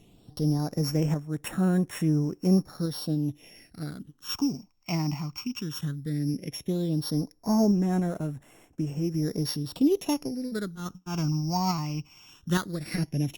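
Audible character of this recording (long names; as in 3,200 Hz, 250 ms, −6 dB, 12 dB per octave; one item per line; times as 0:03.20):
a buzz of ramps at a fixed pitch in blocks of 8 samples
phaser sweep stages 8, 0.15 Hz, lowest notch 480–4,700 Hz
sample-and-hold tremolo
Opus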